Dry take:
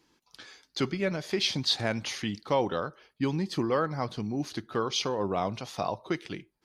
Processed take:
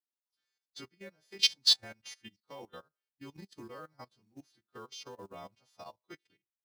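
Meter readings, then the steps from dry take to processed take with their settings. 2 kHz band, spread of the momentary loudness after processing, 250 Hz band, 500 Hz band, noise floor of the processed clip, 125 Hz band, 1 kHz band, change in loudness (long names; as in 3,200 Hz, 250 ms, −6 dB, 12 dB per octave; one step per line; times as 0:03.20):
−9.5 dB, 4 LU, −21.5 dB, −20.0 dB, below −85 dBFS, −23.0 dB, −18.5 dB, +4.5 dB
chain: every partial snapped to a pitch grid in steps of 2 semitones
output level in coarse steps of 10 dB
log-companded quantiser 6 bits
expander for the loud parts 2.5 to 1, over −44 dBFS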